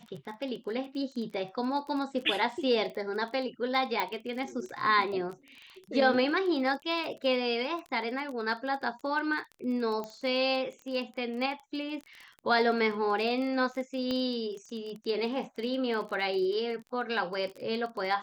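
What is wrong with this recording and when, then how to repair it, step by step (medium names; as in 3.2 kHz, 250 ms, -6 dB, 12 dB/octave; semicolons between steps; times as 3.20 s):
crackle 24 per s -37 dBFS
4.00 s: pop -16 dBFS
10.04 s: pop -24 dBFS
14.11 s: pop -20 dBFS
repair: de-click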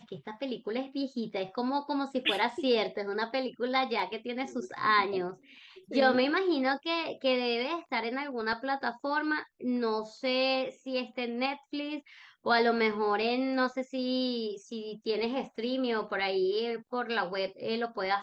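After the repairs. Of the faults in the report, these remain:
4.00 s: pop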